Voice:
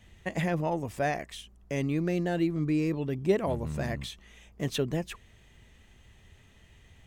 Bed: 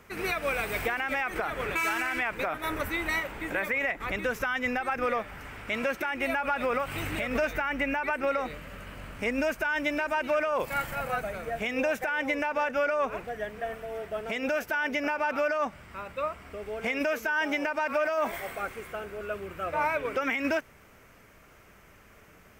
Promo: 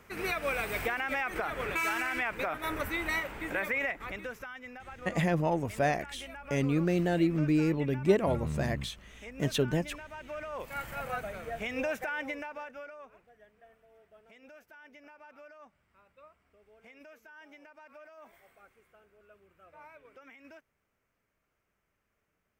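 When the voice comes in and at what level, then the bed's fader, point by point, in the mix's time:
4.80 s, +1.0 dB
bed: 0:03.81 −2.5 dB
0:04.66 −17 dB
0:10.12 −17 dB
0:10.99 −5 dB
0:12.12 −5 dB
0:13.19 −25 dB

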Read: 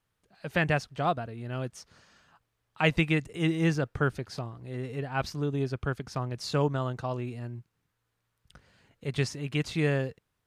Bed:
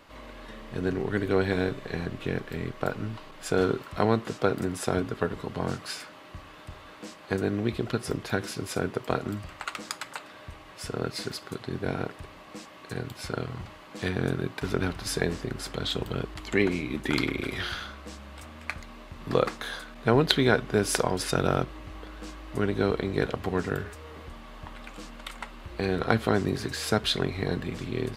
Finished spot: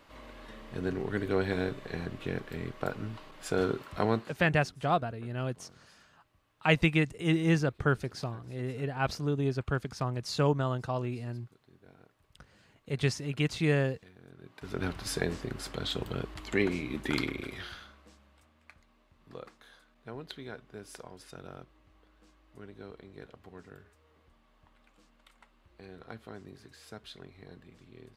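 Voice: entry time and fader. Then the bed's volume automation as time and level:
3.85 s, 0.0 dB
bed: 0:04.17 −4.5 dB
0:04.51 −27.5 dB
0:14.26 −27.5 dB
0:14.86 −4 dB
0:17.15 −4 dB
0:18.54 −21.5 dB

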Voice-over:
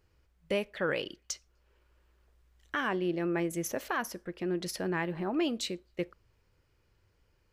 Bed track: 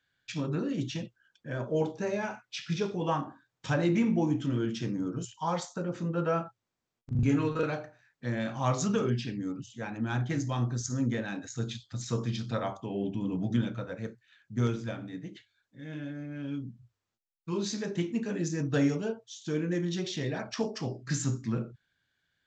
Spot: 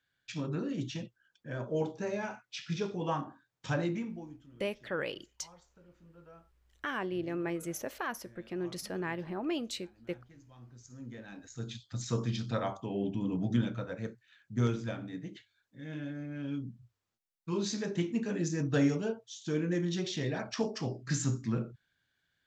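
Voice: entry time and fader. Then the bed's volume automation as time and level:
4.10 s, −4.0 dB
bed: 0:03.79 −3.5 dB
0:04.48 −26.5 dB
0:10.46 −26.5 dB
0:11.94 −1 dB

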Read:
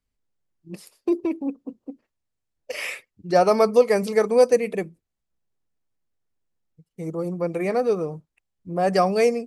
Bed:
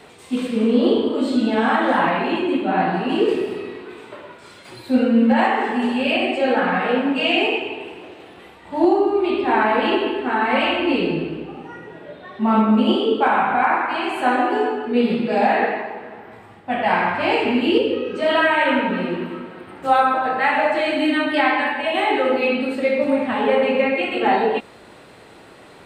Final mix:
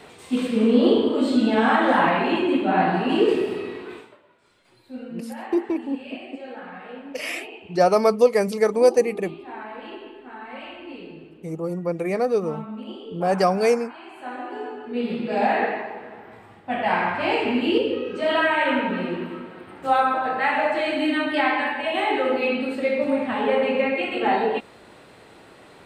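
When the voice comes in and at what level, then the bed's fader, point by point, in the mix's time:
4.45 s, 0.0 dB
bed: 0:03.96 −0.5 dB
0:04.20 −19 dB
0:14.02 −19 dB
0:15.45 −3.5 dB

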